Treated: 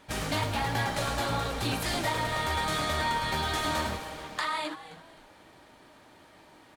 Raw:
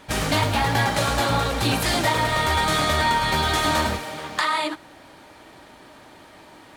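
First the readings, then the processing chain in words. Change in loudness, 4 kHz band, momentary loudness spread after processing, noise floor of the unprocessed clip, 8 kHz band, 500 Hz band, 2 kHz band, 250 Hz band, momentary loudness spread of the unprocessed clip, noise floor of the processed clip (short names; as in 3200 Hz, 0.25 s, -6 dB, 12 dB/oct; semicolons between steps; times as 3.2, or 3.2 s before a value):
-8.5 dB, -8.5 dB, 6 LU, -48 dBFS, -8.5 dB, -8.5 dB, -8.5 dB, -8.5 dB, 6 LU, -56 dBFS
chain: frequency-shifting echo 0.263 s, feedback 35%, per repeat -140 Hz, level -15 dB; gain -8.5 dB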